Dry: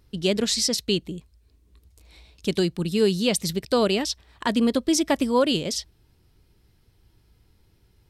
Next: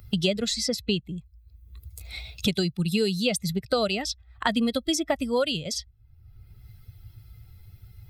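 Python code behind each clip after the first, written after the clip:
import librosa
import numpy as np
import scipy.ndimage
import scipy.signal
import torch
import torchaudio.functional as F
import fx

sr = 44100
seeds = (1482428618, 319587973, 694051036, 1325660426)

y = fx.bin_expand(x, sr, power=1.5)
y = y + 0.5 * np.pad(y, (int(1.5 * sr / 1000.0), 0))[:len(y)]
y = fx.band_squash(y, sr, depth_pct=100)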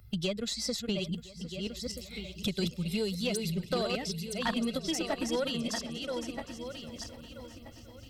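y = fx.reverse_delay_fb(x, sr, ms=640, feedback_pct=47, wet_db=-4.5)
y = fx.tube_stage(y, sr, drive_db=13.0, bias=0.35)
y = fx.echo_swing(y, sr, ms=1011, ratio=3, feedback_pct=46, wet_db=-17.5)
y = y * librosa.db_to_amplitude(-6.0)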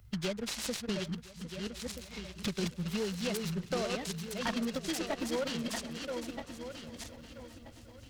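y = fx.noise_mod_delay(x, sr, seeds[0], noise_hz=1200.0, depth_ms=0.048)
y = y * librosa.db_to_amplitude(-2.5)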